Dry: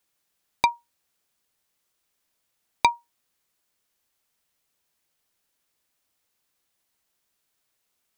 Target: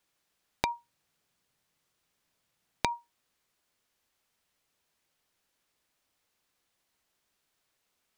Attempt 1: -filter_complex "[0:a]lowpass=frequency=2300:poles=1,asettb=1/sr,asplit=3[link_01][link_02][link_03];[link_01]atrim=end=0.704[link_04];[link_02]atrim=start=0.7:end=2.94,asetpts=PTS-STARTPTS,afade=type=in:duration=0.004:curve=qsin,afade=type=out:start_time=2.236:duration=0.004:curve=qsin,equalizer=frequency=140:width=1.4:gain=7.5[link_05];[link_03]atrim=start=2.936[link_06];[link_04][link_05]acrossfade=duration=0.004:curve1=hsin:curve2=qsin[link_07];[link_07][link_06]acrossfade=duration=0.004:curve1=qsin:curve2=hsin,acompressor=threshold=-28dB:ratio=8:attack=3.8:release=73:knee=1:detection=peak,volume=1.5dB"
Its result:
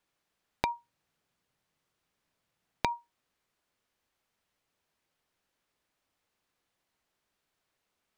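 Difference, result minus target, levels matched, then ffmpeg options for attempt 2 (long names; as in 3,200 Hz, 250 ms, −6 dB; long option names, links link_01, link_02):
4,000 Hz band −2.5 dB
-filter_complex "[0:a]lowpass=frequency=5500:poles=1,asettb=1/sr,asplit=3[link_01][link_02][link_03];[link_01]atrim=end=0.704[link_04];[link_02]atrim=start=0.7:end=2.94,asetpts=PTS-STARTPTS,afade=type=in:duration=0.004:curve=qsin,afade=type=out:start_time=2.236:duration=0.004:curve=qsin,equalizer=frequency=140:width=1.4:gain=7.5[link_05];[link_03]atrim=start=2.936[link_06];[link_04][link_05]acrossfade=duration=0.004:curve1=hsin:curve2=qsin[link_07];[link_07][link_06]acrossfade=duration=0.004:curve1=qsin:curve2=hsin,acompressor=threshold=-28dB:ratio=8:attack=3.8:release=73:knee=1:detection=peak,volume=1.5dB"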